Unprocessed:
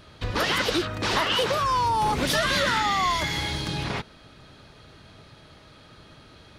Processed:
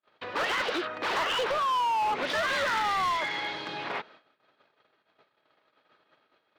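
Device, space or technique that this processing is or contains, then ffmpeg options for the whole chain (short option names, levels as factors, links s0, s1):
walkie-talkie: -af "highpass=470,lowpass=2600,asoftclip=type=hard:threshold=0.0596,agate=range=0.0126:threshold=0.00251:ratio=16:detection=peak"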